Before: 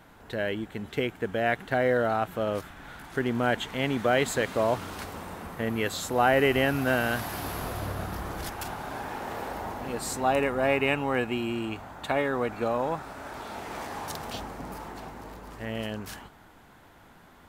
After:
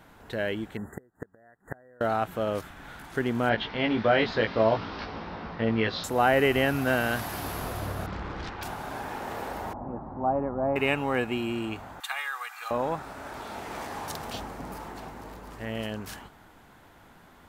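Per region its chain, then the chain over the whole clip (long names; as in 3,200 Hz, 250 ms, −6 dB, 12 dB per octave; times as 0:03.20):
0:00.77–0:02.01: gate with flip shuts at −23 dBFS, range −31 dB + linear-phase brick-wall band-stop 2,000–6,600 Hz
0:03.49–0:06.04: Butterworth low-pass 5,400 Hz 72 dB per octave + double-tracking delay 18 ms −3.5 dB
0:08.06–0:08.63: low-pass filter 4,600 Hz 24 dB per octave + parametric band 670 Hz −12 dB 0.2 octaves + highs frequency-modulated by the lows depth 0.54 ms
0:09.73–0:10.76: low-pass filter 1,000 Hz 24 dB per octave + parametric band 450 Hz −11 dB 0.29 octaves
0:12.00–0:12.71: high-pass filter 1,100 Hz 24 dB per octave + high-shelf EQ 7,900 Hz +9.5 dB + comb filter 2.5 ms, depth 49%
whole clip: no processing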